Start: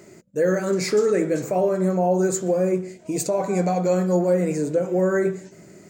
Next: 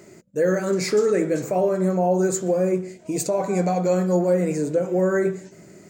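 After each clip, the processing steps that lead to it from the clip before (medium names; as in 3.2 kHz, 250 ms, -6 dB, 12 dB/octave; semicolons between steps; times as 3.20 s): no audible change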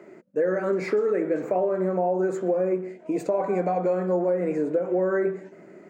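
three-band isolator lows -22 dB, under 210 Hz, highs -23 dB, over 2.4 kHz; compression, threshold -22 dBFS, peak gain reduction 7 dB; trim +2 dB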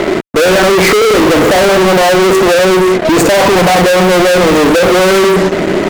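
fuzz box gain 47 dB, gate -55 dBFS; power-law waveshaper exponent 1.4; trim +7.5 dB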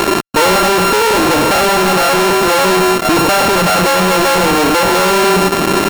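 sorted samples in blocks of 32 samples; gain riding within 3 dB 0.5 s; trim -3.5 dB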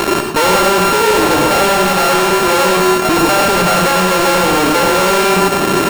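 reverberation RT60 0.40 s, pre-delay 82 ms, DRR 4 dB; trim -2 dB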